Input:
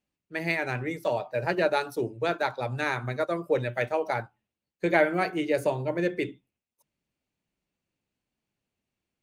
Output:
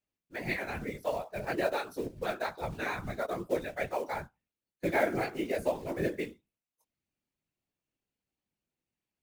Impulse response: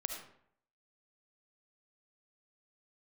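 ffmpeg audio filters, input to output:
-af "acrusher=bits=5:mode=log:mix=0:aa=0.000001,flanger=delay=16.5:depth=3.9:speed=2.3,afftfilt=real='hypot(re,im)*cos(2*PI*random(0))':imag='hypot(re,im)*sin(2*PI*random(1))':win_size=512:overlap=0.75,volume=1.33"

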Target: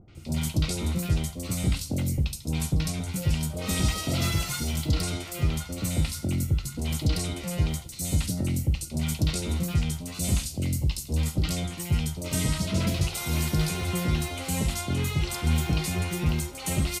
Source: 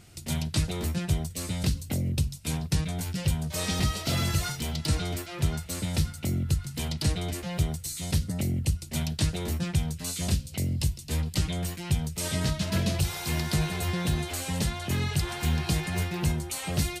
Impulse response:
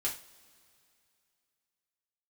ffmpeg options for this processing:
-filter_complex "[0:a]bandreject=f=1700:w=5.6,acrossover=split=800|4300[s0][s1][s2];[s1]adelay=80[s3];[s2]adelay=150[s4];[s0][s3][s4]amix=inputs=3:normalize=0,asplit=2[s5][s6];[1:a]atrim=start_sample=2205[s7];[s6][s7]afir=irnorm=-1:irlink=0,volume=0.355[s8];[s5][s8]amix=inputs=2:normalize=0"

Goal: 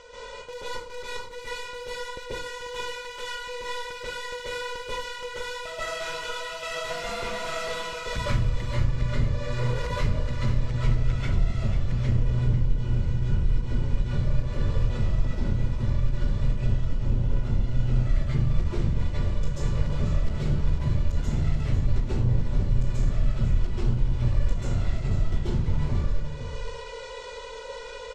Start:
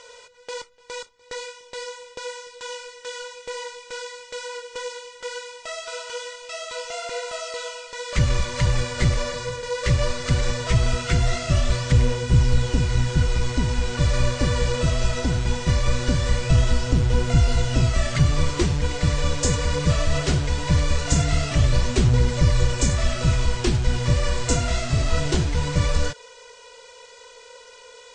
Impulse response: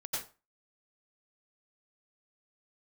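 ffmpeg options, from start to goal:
-filter_complex "[0:a]aemphasis=mode=reproduction:type=bsi,acompressor=threshold=0.0501:ratio=4,aeval=exprs='clip(val(0),-1,0.0158)':c=same,areverse,acompressor=mode=upward:threshold=0.0112:ratio=2.5,areverse,aecho=1:1:492:0.316[s0];[1:a]atrim=start_sample=2205,asetrate=29106,aresample=44100[s1];[s0][s1]afir=irnorm=-1:irlink=0"

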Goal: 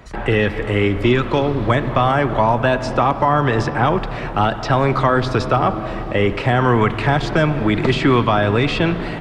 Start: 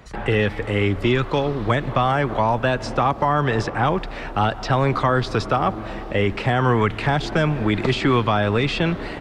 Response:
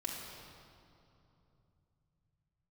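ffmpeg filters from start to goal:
-filter_complex "[0:a]asplit=2[s0][s1];[1:a]atrim=start_sample=2205,lowpass=3500[s2];[s1][s2]afir=irnorm=-1:irlink=0,volume=0.355[s3];[s0][s3]amix=inputs=2:normalize=0,volume=1.19"

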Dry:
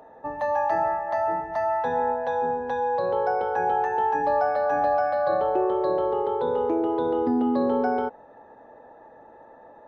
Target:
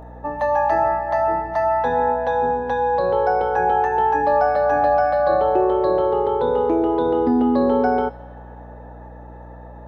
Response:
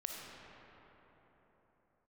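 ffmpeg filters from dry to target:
-filter_complex "[0:a]aeval=exprs='val(0)+0.00631*(sin(2*PI*60*n/s)+sin(2*PI*2*60*n/s)/2+sin(2*PI*3*60*n/s)/3+sin(2*PI*4*60*n/s)/4+sin(2*PI*5*60*n/s)/5)':c=same,asplit=2[s0][s1];[s1]aderivative[s2];[1:a]atrim=start_sample=2205,adelay=26[s3];[s2][s3]afir=irnorm=-1:irlink=0,volume=0.596[s4];[s0][s4]amix=inputs=2:normalize=0,volume=1.88"

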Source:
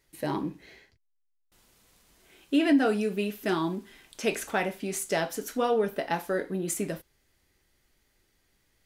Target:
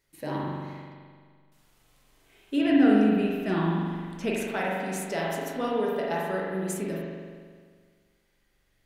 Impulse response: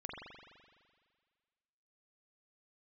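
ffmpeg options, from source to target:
-filter_complex "[0:a]asettb=1/sr,asplit=3[s0][s1][s2];[s0]atrim=end=2.614[s3];[s1]atrim=start=2.61:end=4.34,asetpts=PTS-STARTPTS,afade=t=in:d=0.004:c=qsin,afade=t=out:st=1.726:d=0.004:c=qsin,bass=f=250:g=10,treble=f=4000:g=-6[s4];[s2]atrim=start=4.336[s5];[s3][s4]acrossfade=d=0.004:c1=hsin:c2=qsin[s6];[s6][s5]acrossfade=d=0.004:c1=qsin:c2=hsin[s7];[1:a]atrim=start_sample=2205[s8];[s7][s8]afir=irnorm=-1:irlink=0,volume=1.12"

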